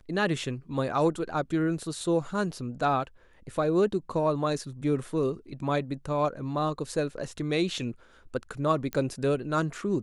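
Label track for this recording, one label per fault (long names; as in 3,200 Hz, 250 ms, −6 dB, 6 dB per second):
8.930000	8.930000	click −17 dBFS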